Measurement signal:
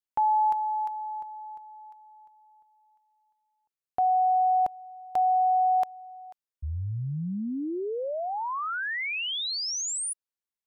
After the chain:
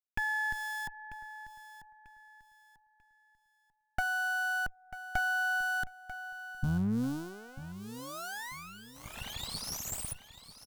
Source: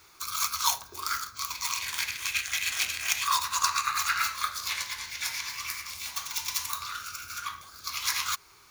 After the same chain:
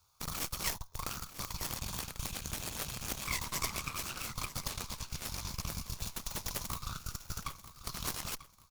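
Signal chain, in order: in parallel at -4.5 dB: Schmitt trigger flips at -28 dBFS; on the sum: compression 1.5:1, threshold -41 dBFS; resonant low shelf 160 Hz +7 dB, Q 1.5; static phaser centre 800 Hz, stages 4; Chebyshev shaper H 3 -15 dB, 4 -8 dB, 8 -11 dB, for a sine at -14 dBFS; on a send: feedback delay 942 ms, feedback 31%, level -14 dB; on the sum: trim -6 dB

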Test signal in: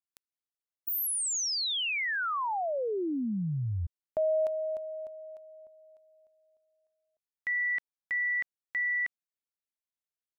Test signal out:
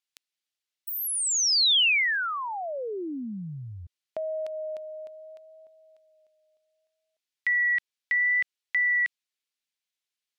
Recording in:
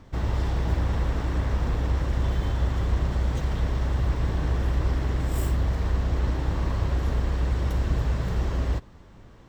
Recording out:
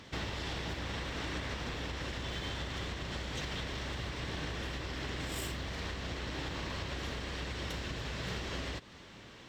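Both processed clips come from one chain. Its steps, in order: wow and flutter 0.73 Hz 19 cents; compression 6:1, threshold -29 dBFS; frequency weighting D

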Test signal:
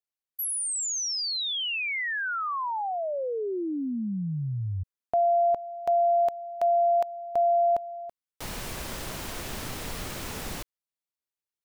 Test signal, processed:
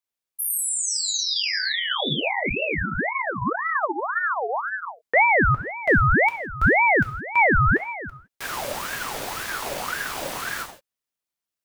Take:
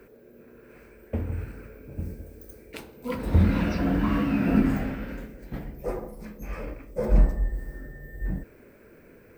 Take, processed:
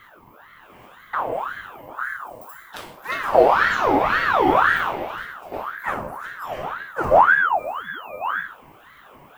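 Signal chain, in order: gated-style reverb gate 190 ms falling, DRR 1 dB; ring modulator with a swept carrier 1.1 kHz, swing 50%, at 1.9 Hz; trim +5 dB

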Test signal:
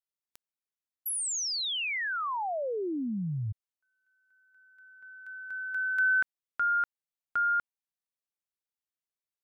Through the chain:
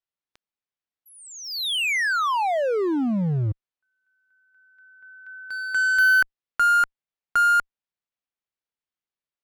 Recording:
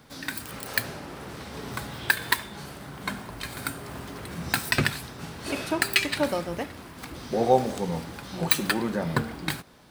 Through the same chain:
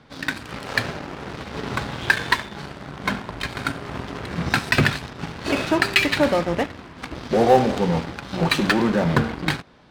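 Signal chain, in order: low-pass 4 kHz 12 dB/octave; in parallel at -10.5 dB: fuzz box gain 30 dB, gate -37 dBFS; on the sum: trim +2.5 dB

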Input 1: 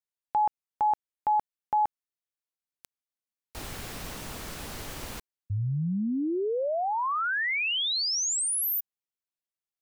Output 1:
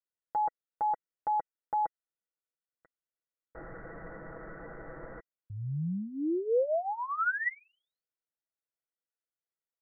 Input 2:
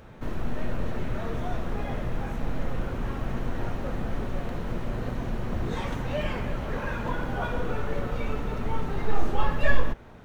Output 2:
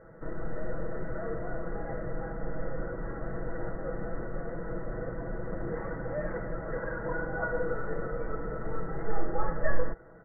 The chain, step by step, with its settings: rippled Chebyshev low-pass 2 kHz, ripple 9 dB; comb 6.1 ms, depth 66%

